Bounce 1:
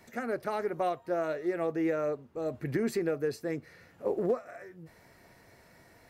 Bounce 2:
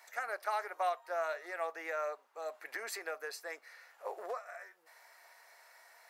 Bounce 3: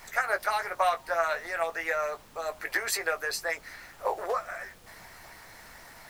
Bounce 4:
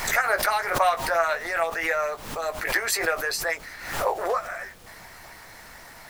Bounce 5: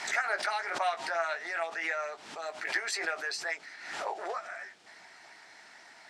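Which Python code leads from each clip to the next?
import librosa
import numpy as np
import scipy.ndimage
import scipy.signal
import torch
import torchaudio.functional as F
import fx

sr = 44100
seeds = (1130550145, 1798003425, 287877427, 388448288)

y1 = scipy.signal.sosfilt(scipy.signal.butter(4, 740.0, 'highpass', fs=sr, output='sos'), x)
y1 = fx.peak_eq(y1, sr, hz=2900.0, db=-3.0, octaves=0.77)
y1 = y1 * 10.0 ** (2.0 / 20.0)
y2 = fx.doubler(y1, sr, ms=18.0, db=-7)
y2 = fx.hpss(y2, sr, part='percussive', gain_db=9)
y2 = fx.dmg_noise_colour(y2, sr, seeds[0], colour='pink', level_db=-59.0)
y2 = y2 * 10.0 ** (4.0 / 20.0)
y3 = fx.pre_swell(y2, sr, db_per_s=70.0)
y3 = y3 * 10.0 ** (4.0 / 20.0)
y4 = fx.cabinet(y3, sr, low_hz=340.0, low_slope=12, high_hz=7500.0, hz=(510.0, 1100.0, 6600.0), db=(-10, -7, -3))
y4 = y4 * 10.0 ** (-6.0 / 20.0)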